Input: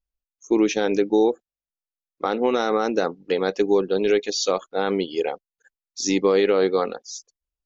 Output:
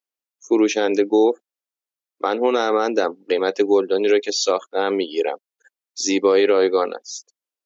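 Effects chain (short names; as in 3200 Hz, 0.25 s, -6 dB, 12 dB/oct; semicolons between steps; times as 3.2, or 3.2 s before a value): HPF 260 Hz 24 dB/oct; gain +3 dB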